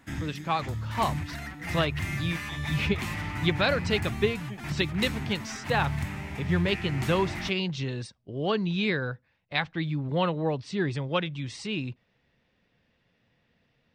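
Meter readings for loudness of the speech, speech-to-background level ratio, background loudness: -30.0 LUFS, 4.0 dB, -34.0 LUFS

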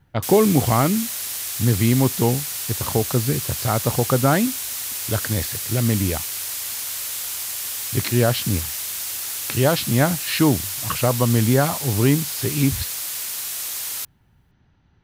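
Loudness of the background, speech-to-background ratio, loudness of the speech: -25.5 LUFS, 4.0 dB, -21.5 LUFS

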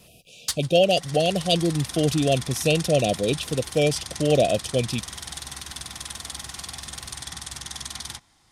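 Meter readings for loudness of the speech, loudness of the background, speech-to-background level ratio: -23.0 LUFS, -34.0 LUFS, 11.0 dB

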